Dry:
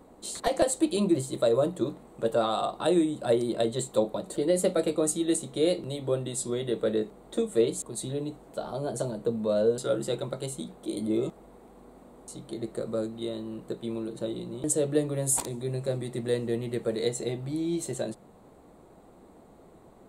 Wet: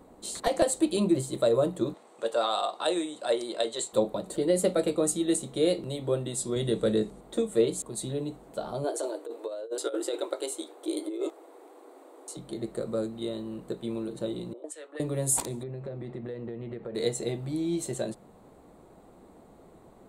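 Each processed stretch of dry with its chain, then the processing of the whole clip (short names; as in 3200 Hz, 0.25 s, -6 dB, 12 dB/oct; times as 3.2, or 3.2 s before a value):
1.94–3.93 BPF 480–6400 Hz + high shelf 4300 Hz +10 dB
6.56–7.21 LPF 11000 Hz 24 dB/oct + tone controls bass +7 dB, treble +9 dB
8.84–12.37 negative-ratio compressor -29 dBFS, ratio -0.5 + brick-wall FIR high-pass 270 Hz
14.53–15 elliptic high-pass 270 Hz + high shelf 4800 Hz +9.5 dB + auto-wah 450–2400 Hz, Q 2.6, up, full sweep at -18 dBFS
15.63–16.95 LPF 2200 Hz + compressor 10:1, threshold -33 dBFS
whole clip: dry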